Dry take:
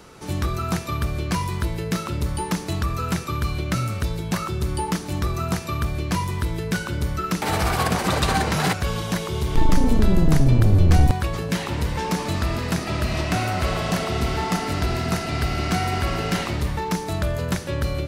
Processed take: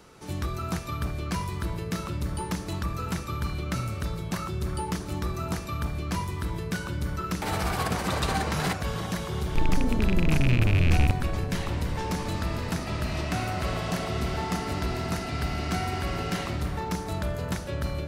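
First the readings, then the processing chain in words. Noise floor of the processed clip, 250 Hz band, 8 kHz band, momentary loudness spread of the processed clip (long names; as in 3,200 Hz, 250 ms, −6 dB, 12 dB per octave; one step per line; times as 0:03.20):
−35 dBFS, −6.0 dB, −6.5 dB, 8 LU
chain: loose part that buzzes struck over −14 dBFS, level −12 dBFS
bucket-brigade delay 337 ms, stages 4,096, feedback 68%, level −11 dB
level −6.5 dB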